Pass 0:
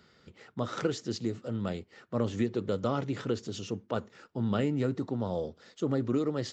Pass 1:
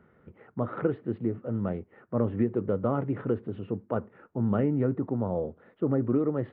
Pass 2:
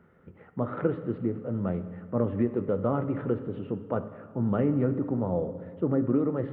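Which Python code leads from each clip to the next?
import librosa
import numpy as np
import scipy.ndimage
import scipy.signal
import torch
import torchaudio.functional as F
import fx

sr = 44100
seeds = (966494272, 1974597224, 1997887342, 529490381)

y1 = scipy.ndimage.gaussian_filter1d(x, 4.9, mode='constant')
y1 = y1 * 10.0 ** (3.5 / 20.0)
y2 = fx.rev_fdn(y1, sr, rt60_s=1.8, lf_ratio=1.2, hf_ratio=0.85, size_ms=34.0, drr_db=9.0)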